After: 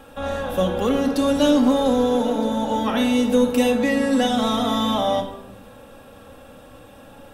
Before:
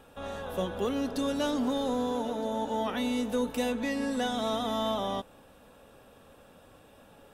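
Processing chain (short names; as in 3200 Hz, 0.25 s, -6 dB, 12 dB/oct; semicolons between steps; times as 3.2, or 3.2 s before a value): shoebox room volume 2300 m³, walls furnished, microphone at 2.2 m; gain +8 dB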